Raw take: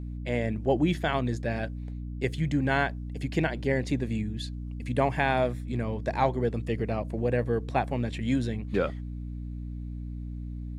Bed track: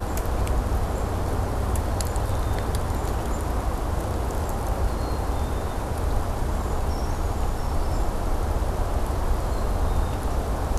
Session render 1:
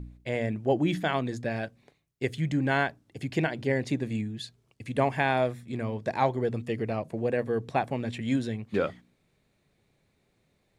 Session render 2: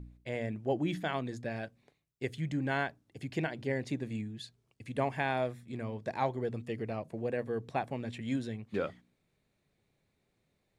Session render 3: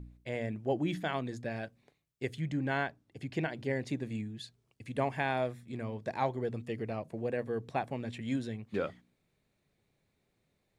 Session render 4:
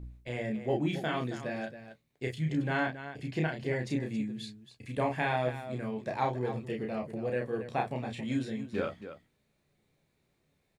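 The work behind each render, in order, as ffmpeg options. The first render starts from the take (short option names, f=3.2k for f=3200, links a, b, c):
-af "bandreject=f=60:t=h:w=4,bandreject=f=120:t=h:w=4,bandreject=f=180:t=h:w=4,bandreject=f=240:t=h:w=4,bandreject=f=300:t=h:w=4"
-af "volume=-6.5dB"
-filter_complex "[0:a]asettb=1/sr,asplit=3[a][b][c];[a]atrim=end=2.394[d];[b]atrim=start=2.39:end=3.49,asetpts=PTS-STARTPTS,afade=t=in:d=0.004:c=qsin,afade=t=out:st=1.096:d=0.004:c=qsin,highshelf=f=7.1k:g=-6.5[e];[c]atrim=start=3.486[f];[d][e]acrossfade=d=0.004:c1=hsin:c2=qsin[g];[g][f]acrossfade=d=0.004:c1=qsin:c2=hsin"
-filter_complex "[0:a]asplit=2[a][b];[b]adelay=14,volume=-10.5dB[c];[a][c]amix=inputs=2:normalize=0,aecho=1:1:32.07|274.1:0.708|0.282"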